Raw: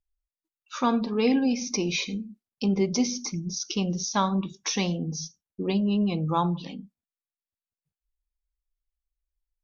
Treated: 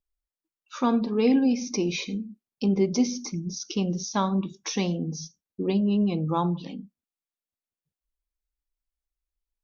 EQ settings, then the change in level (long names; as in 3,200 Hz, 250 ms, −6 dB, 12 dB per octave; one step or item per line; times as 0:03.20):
parametric band 310 Hz +6 dB 2.1 octaves
−3.5 dB